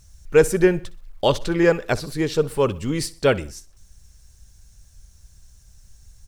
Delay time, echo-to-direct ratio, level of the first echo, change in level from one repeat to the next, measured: 63 ms, -19.0 dB, -20.0 dB, -7.0 dB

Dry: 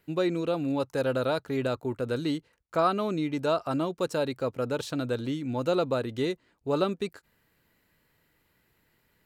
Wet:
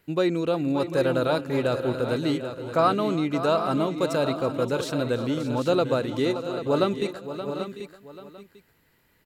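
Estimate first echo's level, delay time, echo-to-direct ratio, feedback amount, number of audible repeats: -19.0 dB, 331 ms, -6.5 dB, no regular repeats, 7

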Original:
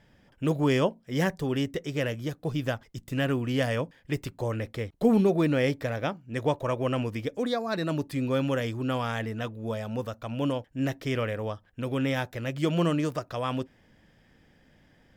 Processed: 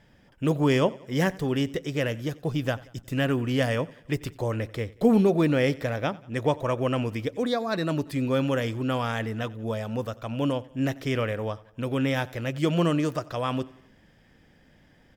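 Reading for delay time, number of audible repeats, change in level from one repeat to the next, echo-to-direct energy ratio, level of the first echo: 91 ms, 3, -6.0 dB, -20.5 dB, -22.0 dB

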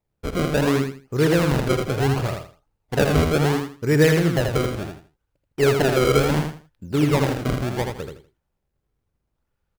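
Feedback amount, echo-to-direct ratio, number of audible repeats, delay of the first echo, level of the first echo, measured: 25%, -4.5 dB, 3, 81 ms, -5.0 dB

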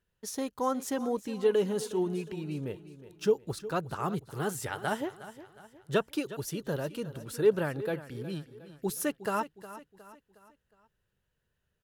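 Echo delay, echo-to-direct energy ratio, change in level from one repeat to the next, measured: 362 ms, -14.0 dB, -7.0 dB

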